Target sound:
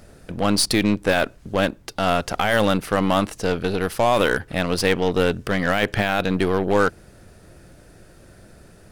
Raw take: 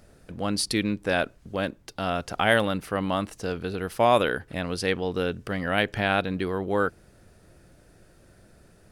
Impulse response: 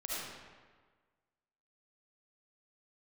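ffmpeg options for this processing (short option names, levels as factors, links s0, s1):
-af "alimiter=limit=0.168:level=0:latency=1:release=19,aeval=exprs='0.168*(cos(1*acos(clip(val(0)/0.168,-1,1)))-cos(1*PI/2))+0.0119*(cos(8*acos(clip(val(0)/0.168,-1,1)))-cos(8*PI/2))':c=same,volume=2.37"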